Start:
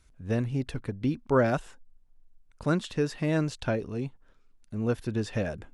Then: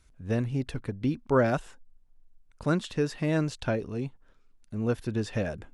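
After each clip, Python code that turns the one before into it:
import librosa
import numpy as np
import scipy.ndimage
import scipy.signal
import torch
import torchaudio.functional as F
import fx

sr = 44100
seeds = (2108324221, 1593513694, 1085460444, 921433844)

y = x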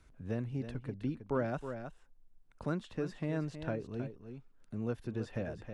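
y = fx.high_shelf(x, sr, hz=3100.0, db=-9.0)
y = y + 10.0 ** (-11.0 / 20.0) * np.pad(y, (int(318 * sr / 1000.0), 0))[:len(y)]
y = fx.band_squash(y, sr, depth_pct=40)
y = F.gain(torch.from_numpy(y), -8.5).numpy()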